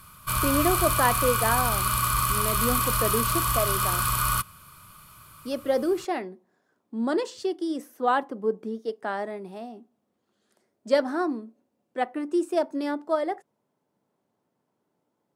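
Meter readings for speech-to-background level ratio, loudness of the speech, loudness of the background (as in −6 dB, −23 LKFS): −4.5 dB, −28.5 LKFS, −24.0 LKFS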